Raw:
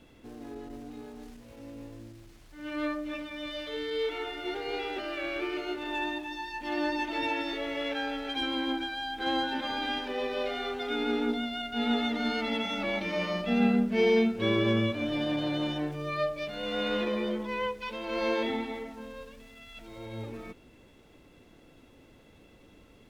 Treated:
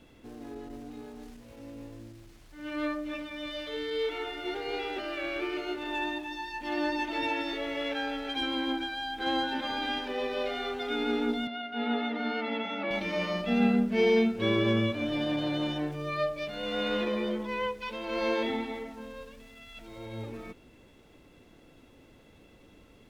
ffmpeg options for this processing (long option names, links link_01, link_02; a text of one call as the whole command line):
ffmpeg -i in.wav -filter_complex "[0:a]asettb=1/sr,asplit=3[link_01][link_02][link_03];[link_01]atrim=end=11.474[link_04];[link_02]atrim=start=11.47:end=12.91,asetpts=PTS-STARTPTS,afade=type=in:duration=0.004:curve=qsin,afade=type=out:start_time=1.436:duration=0.004:curve=qsin,highpass=230,lowpass=2700[link_05];[link_03]atrim=start=12.906[link_06];[link_04][link_05]acrossfade=duration=0.004:curve1=hsin:curve2=qsin[link_07];[link_07][link_06]acrossfade=duration=0.004:curve1=qsin:curve2=hsin" out.wav